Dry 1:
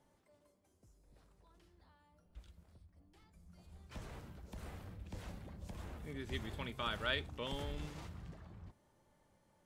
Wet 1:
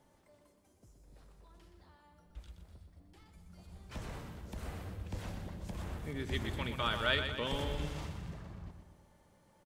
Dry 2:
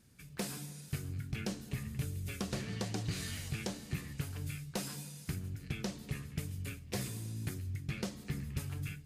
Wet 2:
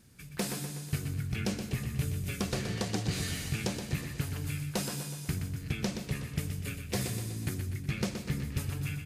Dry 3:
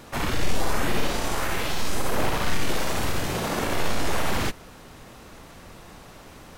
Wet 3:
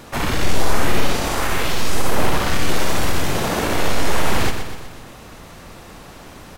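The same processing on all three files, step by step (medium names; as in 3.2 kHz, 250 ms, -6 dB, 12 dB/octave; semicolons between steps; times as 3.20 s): feedback delay 123 ms, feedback 53%, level -8 dB; trim +5 dB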